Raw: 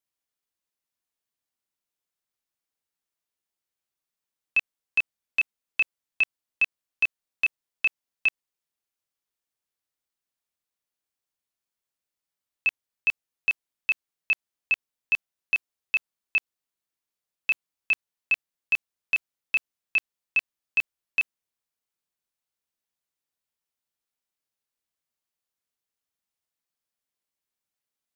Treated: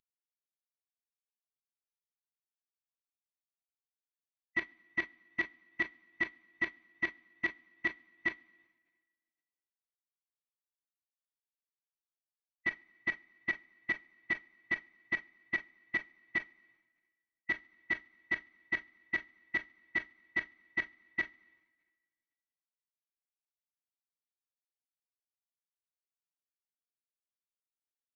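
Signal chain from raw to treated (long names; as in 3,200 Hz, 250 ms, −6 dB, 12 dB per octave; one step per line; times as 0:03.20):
variable-slope delta modulation 32 kbit/s
coupled-rooms reverb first 0.27 s, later 1.6 s, from −19 dB, DRR 12 dB
formants moved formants −5 semitones
level −7 dB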